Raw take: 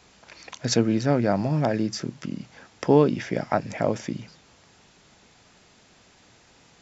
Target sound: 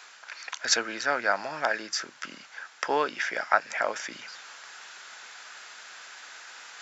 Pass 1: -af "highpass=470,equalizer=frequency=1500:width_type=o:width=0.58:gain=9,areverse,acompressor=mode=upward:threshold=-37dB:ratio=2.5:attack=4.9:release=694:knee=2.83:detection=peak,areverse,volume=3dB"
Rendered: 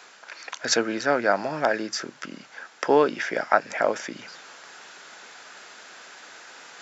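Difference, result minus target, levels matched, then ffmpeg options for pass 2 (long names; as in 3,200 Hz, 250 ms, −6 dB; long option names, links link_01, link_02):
500 Hz band +4.5 dB
-af "highpass=960,equalizer=frequency=1500:width_type=o:width=0.58:gain=9,areverse,acompressor=mode=upward:threshold=-37dB:ratio=2.5:attack=4.9:release=694:knee=2.83:detection=peak,areverse,volume=3dB"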